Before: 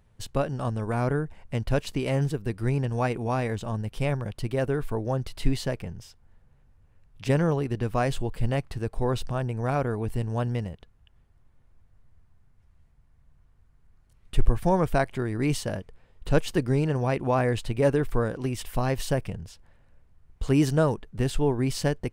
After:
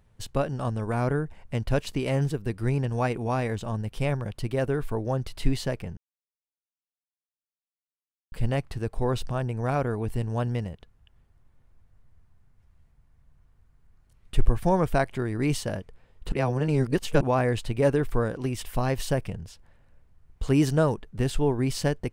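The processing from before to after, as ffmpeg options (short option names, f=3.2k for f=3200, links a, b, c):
-filter_complex "[0:a]asplit=5[a][b][c][d][e];[a]atrim=end=5.97,asetpts=PTS-STARTPTS,afade=t=out:st=5.966:d=0.004:c=hsin[f];[b]atrim=start=5.97:end=8.32,asetpts=PTS-STARTPTS,volume=0[g];[c]atrim=start=8.32:end=16.322,asetpts=PTS-STARTPTS,afade=t=in:d=0.004:c=hsin[h];[d]atrim=start=16.318:end=17.212,asetpts=PTS-STARTPTS,areverse[i];[e]atrim=start=17.208[j];[f][g][h]concat=n=3:v=0:a=1[k];[k][i]acrossfade=d=0.004:c1=hsin:c2=hsin[l];[l][j]acrossfade=d=0.004:c1=hsin:c2=hsin"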